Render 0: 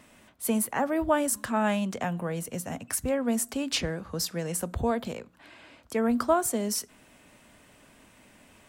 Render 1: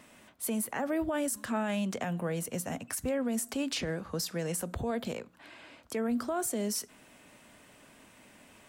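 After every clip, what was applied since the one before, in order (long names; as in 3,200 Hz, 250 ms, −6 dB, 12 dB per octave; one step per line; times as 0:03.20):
dynamic equaliser 1,000 Hz, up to −5 dB, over −41 dBFS, Q 1.7
brickwall limiter −23.5 dBFS, peak gain reduction 10.5 dB
low-shelf EQ 89 Hz −8 dB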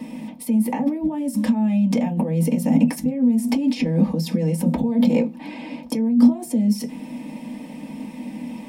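compressor whose output falls as the input rises −39 dBFS, ratio −1
phaser with its sweep stopped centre 380 Hz, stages 6
convolution reverb RT60 0.15 s, pre-delay 3 ms, DRR −2 dB
level +2 dB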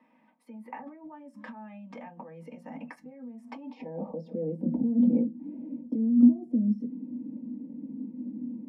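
band-pass filter sweep 1,400 Hz → 270 Hz, 0:03.45–0:04.78
noise reduction from a noise print of the clip's start 8 dB
one half of a high-frequency compander decoder only
level −3 dB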